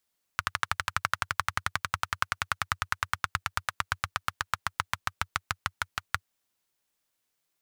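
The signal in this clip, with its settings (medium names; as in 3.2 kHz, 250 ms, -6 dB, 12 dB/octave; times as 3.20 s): single-cylinder engine model, changing speed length 5.83 s, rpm 1500, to 700, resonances 93/1300 Hz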